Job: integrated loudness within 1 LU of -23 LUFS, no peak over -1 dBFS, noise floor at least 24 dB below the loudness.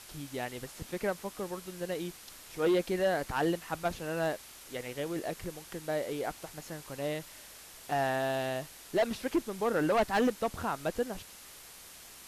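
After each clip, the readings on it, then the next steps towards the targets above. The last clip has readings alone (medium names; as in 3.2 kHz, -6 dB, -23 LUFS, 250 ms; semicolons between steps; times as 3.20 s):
clipped samples 1.0%; clipping level -22.5 dBFS; noise floor -51 dBFS; noise floor target -58 dBFS; loudness -33.5 LUFS; peak level -22.5 dBFS; loudness target -23.0 LUFS
-> clip repair -22.5 dBFS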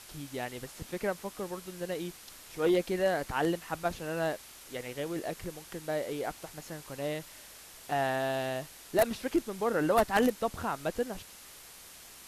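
clipped samples 0.0%; noise floor -51 dBFS; noise floor target -57 dBFS
-> noise reduction 6 dB, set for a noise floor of -51 dBFS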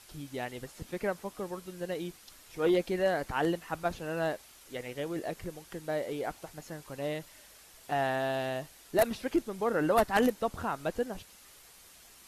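noise floor -56 dBFS; noise floor target -57 dBFS
-> noise reduction 6 dB, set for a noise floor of -56 dBFS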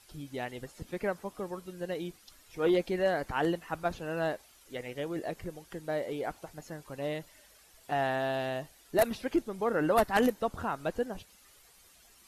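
noise floor -60 dBFS; loudness -33.0 LUFS; peak level -13.0 dBFS; loudness target -23.0 LUFS
-> trim +10 dB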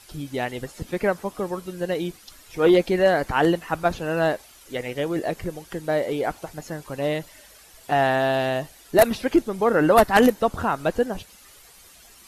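loudness -23.0 LUFS; peak level -3.0 dBFS; noise floor -50 dBFS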